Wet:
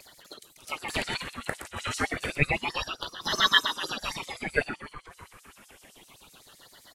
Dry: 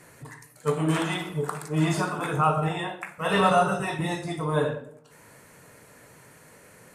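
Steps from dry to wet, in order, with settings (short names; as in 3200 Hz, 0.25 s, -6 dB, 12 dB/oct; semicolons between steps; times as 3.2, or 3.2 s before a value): feedback echo 0.306 s, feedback 46%, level -12.5 dB; LFO high-pass sine 7.8 Hz 580–5700 Hz; vibrato 1.5 Hz 48 cents; upward compressor, threshold -46 dBFS; ring modulator with a swept carrier 1500 Hz, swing 65%, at 0.29 Hz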